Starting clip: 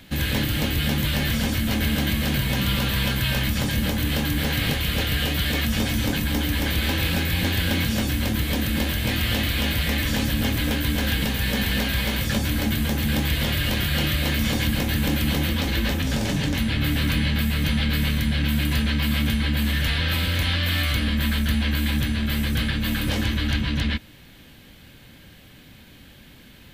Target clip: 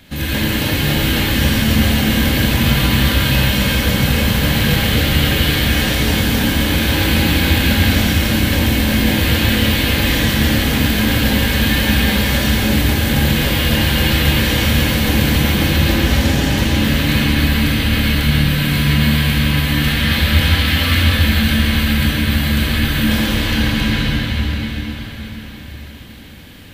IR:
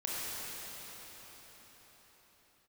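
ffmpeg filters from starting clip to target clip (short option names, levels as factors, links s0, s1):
-filter_complex "[1:a]atrim=start_sample=2205[s0];[0:a][s0]afir=irnorm=-1:irlink=0,volume=1.5"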